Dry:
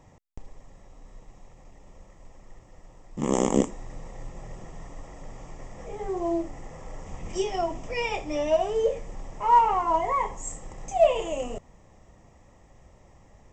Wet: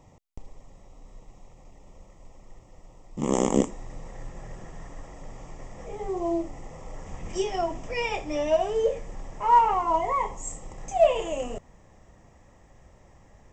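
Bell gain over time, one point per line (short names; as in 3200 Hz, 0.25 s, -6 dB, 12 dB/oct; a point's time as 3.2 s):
bell 1600 Hz 0.27 oct
-13 dB
from 3.28 s -2.5 dB
from 4.08 s +7 dB
from 5.06 s -1 dB
from 5.97 s -7.5 dB
from 6.96 s +3.5 dB
from 9.74 s -7 dB
from 10.78 s +5 dB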